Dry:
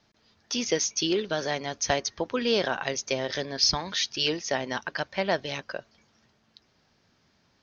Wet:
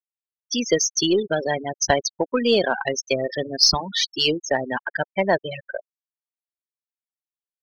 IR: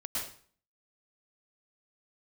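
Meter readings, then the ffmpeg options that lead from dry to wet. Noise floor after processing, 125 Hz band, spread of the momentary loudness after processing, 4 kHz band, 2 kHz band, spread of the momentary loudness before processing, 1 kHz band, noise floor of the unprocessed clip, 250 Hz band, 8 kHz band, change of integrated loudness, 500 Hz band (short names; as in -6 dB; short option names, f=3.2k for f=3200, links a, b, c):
under -85 dBFS, +5.0 dB, 10 LU, +5.5 dB, +5.0 dB, 9 LU, +6.0 dB, -68 dBFS, +6.5 dB, n/a, +6.0 dB, +6.5 dB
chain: -af "afftfilt=real='re*gte(hypot(re,im),0.0708)':imag='im*gte(hypot(re,im),0.0708)':win_size=1024:overlap=0.75,acontrast=38,aeval=exprs='0.562*(cos(1*acos(clip(val(0)/0.562,-1,1)))-cos(1*PI/2))+0.0447*(cos(3*acos(clip(val(0)/0.562,-1,1)))-cos(3*PI/2))+0.00398*(cos(6*acos(clip(val(0)/0.562,-1,1)))-cos(6*PI/2))':c=same,volume=3.5dB"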